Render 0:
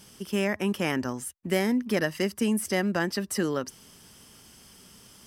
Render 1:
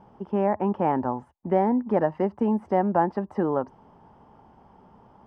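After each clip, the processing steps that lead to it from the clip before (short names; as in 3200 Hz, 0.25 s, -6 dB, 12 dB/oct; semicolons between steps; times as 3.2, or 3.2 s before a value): synth low-pass 860 Hz, resonance Q 4.9; gain +1 dB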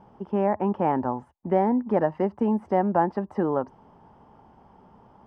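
nothing audible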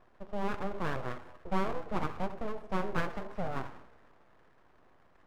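two-slope reverb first 0.85 s, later 2.7 s, DRR 6.5 dB; full-wave rectifier; gain -9 dB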